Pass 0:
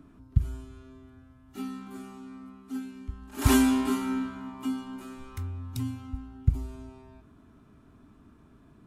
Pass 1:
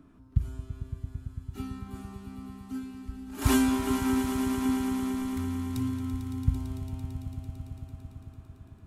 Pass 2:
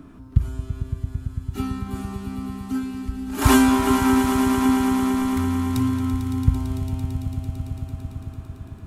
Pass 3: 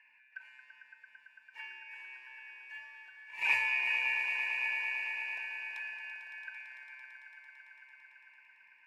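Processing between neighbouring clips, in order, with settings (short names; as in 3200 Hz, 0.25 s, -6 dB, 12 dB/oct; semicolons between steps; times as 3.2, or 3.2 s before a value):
swelling echo 0.112 s, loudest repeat 5, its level -12 dB; gain -2.5 dB
dynamic EQ 1000 Hz, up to +5 dB, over -45 dBFS, Q 0.74; in parallel at 0 dB: compressor, threshold -37 dBFS, peak gain reduction 18 dB; on the sum: gain +6 dB
four-band scrambler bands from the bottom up 2143; double band-pass 1500 Hz, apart 1.3 oct; gain -3.5 dB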